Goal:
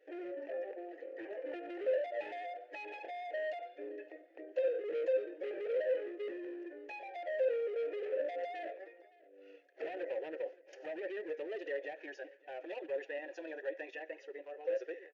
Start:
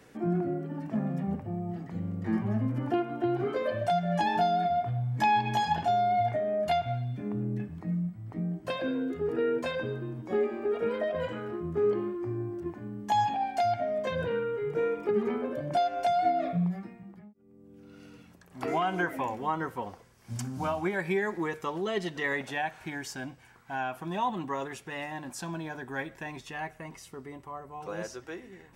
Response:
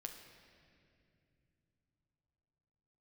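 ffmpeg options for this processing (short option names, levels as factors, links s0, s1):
-filter_complex "[0:a]agate=range=0.0224:threshold=0.00398:ratio=3:detection=peak,afftfilt=real='re*between(b*sr/4096,290,7000)':imag='im*between(b*sr/4096,290,7000)':win_size=4096:overlap=0.75,acrossover=split=770[s0][s1];[s1]acompressor=threshold=0.00708:ratio=8[s2];[s0][s2]amix=inputs=2:normalize=0,volume=63.1,asoftclip=hard,volume=0.0158,asplit=3[s3][s4][s5];[s3]bandpass=f=530:t=q:w=8,volume=1[s6];[s4]bandpass=f=1840:t=q:w=8,volume=0.501[s7];[s5]bandpass=f=2480:t=q:w=8,volume=0.355[s8];[s6][s7][s8]amix=inputs=3:normalize=0,atempo=1.9,aecho=1:1:567|1134:0.075|0.0172,volume=2.99"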